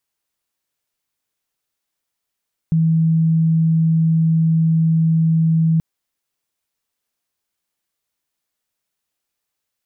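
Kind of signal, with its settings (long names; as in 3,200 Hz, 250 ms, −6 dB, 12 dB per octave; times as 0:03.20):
tone sine 162 Hz −12 dBFS 3.08 s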